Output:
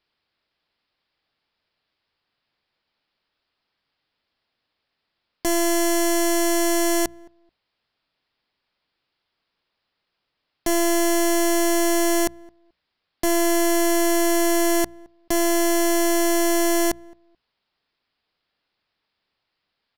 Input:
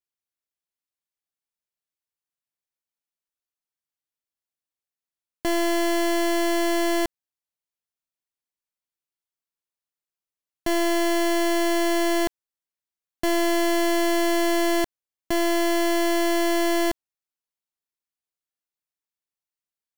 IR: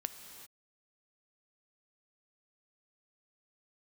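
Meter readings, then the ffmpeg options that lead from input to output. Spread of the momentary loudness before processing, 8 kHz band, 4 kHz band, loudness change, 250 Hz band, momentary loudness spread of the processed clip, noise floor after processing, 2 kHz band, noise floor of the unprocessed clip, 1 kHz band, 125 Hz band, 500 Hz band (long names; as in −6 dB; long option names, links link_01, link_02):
6 LU, +9.0 dB, +0.5 dB, +2.5 dB, +2.0 dB, 6 LU, −79 dBFS, +0.5 dB, below −85 dBFS, +1.0 dB, can't be measured, +1.5 dB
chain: -filter_complex "[0:a]asoftclip=type=tanh:threshold=-23.5dB,aresample=11025,aresample=44100,aeval=exprs='0.0708*sin(PI/2*3.16*val(0)/0.0708)':channel_layout=same,bandreject=frequency=60:width_type=h:width=6,bandreject=frequency=120:width_type=h:width=6,bandreject=frequency=180:width_type=h:width=6,asplit=2[link_01][link_02];[link_02]adelay=217,lowpass=frequency=920:poles=1,volume=-23dB,asplit=2[link_03][link_04];[link_04]adelay=217,lowpass=frequency=920:poles=1,volume=0.2[link_05];[link_03][link_05]amix=inputs=2:normalize=0[link_06];[link_01][link_06]amix=inputs=2:normalize=0,volume=6dB"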